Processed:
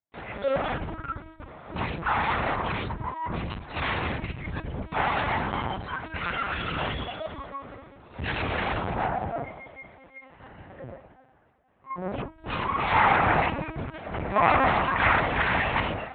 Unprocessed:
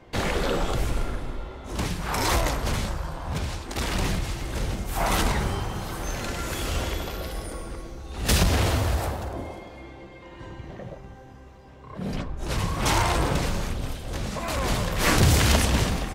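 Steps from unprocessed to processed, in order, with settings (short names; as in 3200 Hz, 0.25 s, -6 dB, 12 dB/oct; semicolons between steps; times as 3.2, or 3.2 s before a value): AGC gain up to 10 dB; thinning echo 0.164 s, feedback 77%, high-pass 720 Hz, level -16.5 dB; spectral noise reduction 17 dB; tube stage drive 30 dB, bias 0.6; band shelf 1100 Hz +8 dB 2.6 oct, from 12.92 s +14.5 dB; expander -45 dBFS; low shelf 74 Hz +3 dB; reverb RT60 0.45 s, pre-delay 3 ms, DRR 10.5 dB; LPC vocoder at 8 kHz pitch kept; HPF 52 Hz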